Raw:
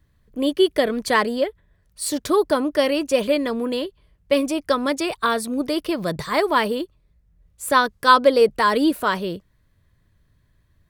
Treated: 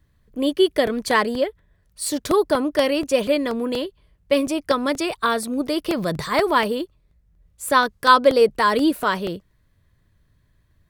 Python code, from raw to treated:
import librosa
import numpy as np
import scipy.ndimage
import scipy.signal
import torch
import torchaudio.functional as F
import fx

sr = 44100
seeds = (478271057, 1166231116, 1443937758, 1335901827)

y = fx.transient(x, sr, attack_db=1, sustain_db=5, at=(5.87, 6.61))
y = fx.buffer_crackle(y, sr, first_s=0.87, period_s=0.24, block=64, kind='repeat')